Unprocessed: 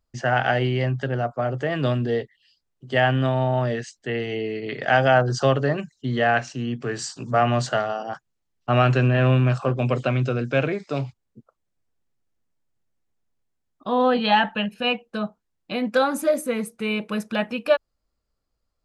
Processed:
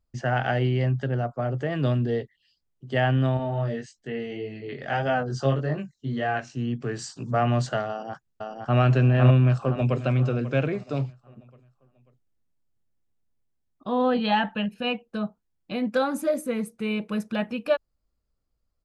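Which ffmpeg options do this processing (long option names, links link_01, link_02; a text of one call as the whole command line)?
ffmpeg -i in.wav -filter_complex "[0:a]asettb=1/sr,asplit=3[link_01][link_02][link_03];[link_01]atrim=end=3.374[link_04];[link_02]atrim=start=3.37:end=6.57,asetpts=PTS-STARTPTS,afade=type=in:duration=0.004:curve=qsin,afade=type=out:start_time=3.196:duration=0.004:curve=qsin,flanger=delay=19.5:depth=2.7:speed=1.7[link_05];[link_03]atrim=start=6.566[link_06];[link_04][link_05]acrossfade=duration=0.004:curve1=hsin:curve2=qsin[link_07];[link_07][link_06]acrossfade=duration=0.004:curve1=qsin:curve2=hsin,asplit=2[link_08][link_09];[link_09]afade=type=in:start_time=7.89:duration=0.01,afade=type=out:start_time=8.79:duration=0.01,aecho=0:1:510|1020|1530|2040|2550:0.749894|0.299958|0.119983|0.0479932|0.0191973[link_10];[link_08][link_10]amix=inputs=2:normalize=0,asplit=2[link_11][link_12];[link_12]afade=type=in:start_time=9.37:duration=0.01,afade=type=out:start_time=10.02:duration=0.01,aecho=0:1:540|1080|1620|2160:0.199526|0.0798105|0.0319242|0.0127697[link_13];[link_11][link_13]amix=inputs=2:normalize=0,lowshelf=frequency=340:gain=7.5,volume=-6dB" out.wav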